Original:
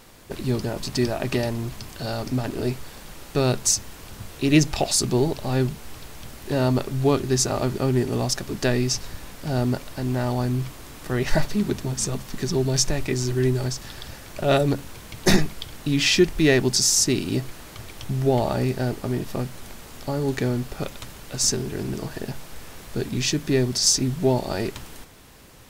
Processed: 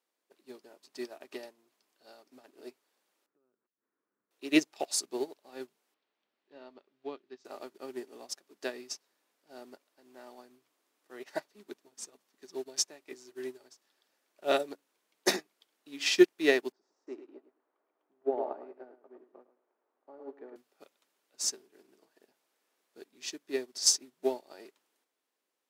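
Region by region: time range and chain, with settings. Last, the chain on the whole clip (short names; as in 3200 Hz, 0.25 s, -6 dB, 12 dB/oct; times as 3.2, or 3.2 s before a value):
3.26–4.31 bell 740 Hz -13.5 dB 1.2 oct + compressor 20:1, threshold -32 dBFS + LPF 1500 Hz 24 dB/oct
5.94–7.45 ladder low-pass 4900 Hz, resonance 20% + bell 190 Hz +3.5 dB 0.63 oct
16.72–20.56 Butterworth band-pass 580 Hz, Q 0.57 + feedback echo 0.108 s, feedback 28%, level -5.5 dB
whole clip: HPF 300 Hz 24 dB/oct; upward expander 2.5:1, over -36 dBFS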